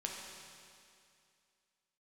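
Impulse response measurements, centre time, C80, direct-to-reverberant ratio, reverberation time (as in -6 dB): 103 ms, 2.5 dB, -1.5 dB, 2.4 s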